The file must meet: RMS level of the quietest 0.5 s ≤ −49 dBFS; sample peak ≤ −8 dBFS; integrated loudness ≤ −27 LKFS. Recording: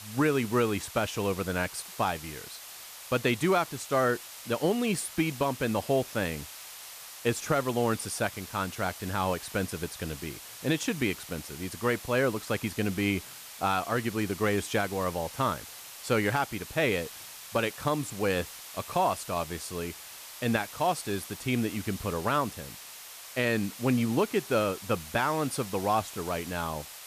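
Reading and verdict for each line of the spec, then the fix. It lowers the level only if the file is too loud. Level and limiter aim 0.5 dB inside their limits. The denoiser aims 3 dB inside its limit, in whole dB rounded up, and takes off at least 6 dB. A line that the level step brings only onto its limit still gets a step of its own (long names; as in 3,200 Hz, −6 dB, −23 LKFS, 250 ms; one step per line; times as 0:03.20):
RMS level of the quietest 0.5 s −46 dBFS: out of spec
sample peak −12.5 dBFS: in spec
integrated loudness −30.0 LKFS: in spec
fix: broadband denoise 6 dB, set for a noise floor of −46 dBFS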